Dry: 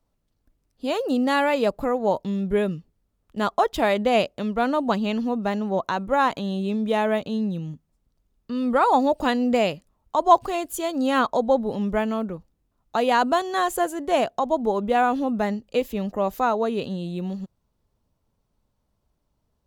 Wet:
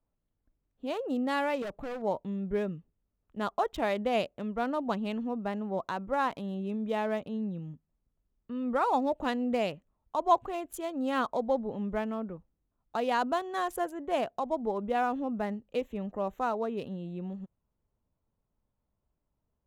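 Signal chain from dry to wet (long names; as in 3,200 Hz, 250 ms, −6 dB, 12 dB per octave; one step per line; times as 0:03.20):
adaptive Wiener filter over 9 samples
0:01.62–0:02.02: hard clipping −26 dBFS, distortion −21 dB
level −8.5 dB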